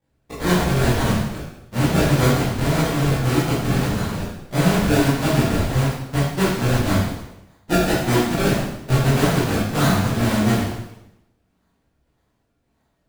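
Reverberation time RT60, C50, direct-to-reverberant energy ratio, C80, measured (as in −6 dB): 0.90 s, 0.5 dB, −10.0 dB, 4.0 dB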